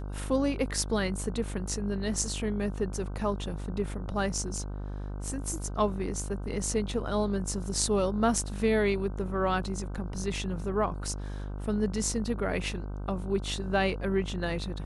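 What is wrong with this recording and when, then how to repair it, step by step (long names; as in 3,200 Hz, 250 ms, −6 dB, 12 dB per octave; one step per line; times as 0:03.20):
mains buzz 50 Hz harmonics 31 −36 dBFS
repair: hum removal 50 Hz, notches 31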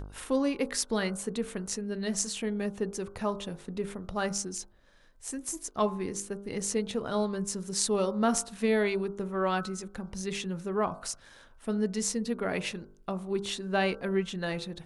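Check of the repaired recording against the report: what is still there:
none of them is left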